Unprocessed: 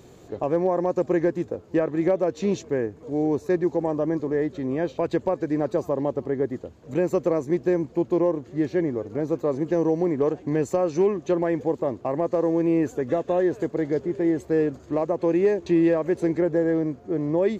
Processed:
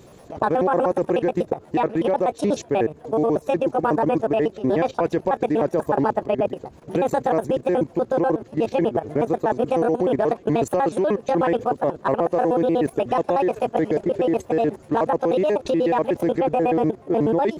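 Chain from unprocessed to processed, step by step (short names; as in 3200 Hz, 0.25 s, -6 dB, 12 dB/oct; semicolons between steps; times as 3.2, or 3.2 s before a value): trilling pitch shifter +7 st, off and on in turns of 61 ms; level quantiser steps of 14 dB; gain +9 dB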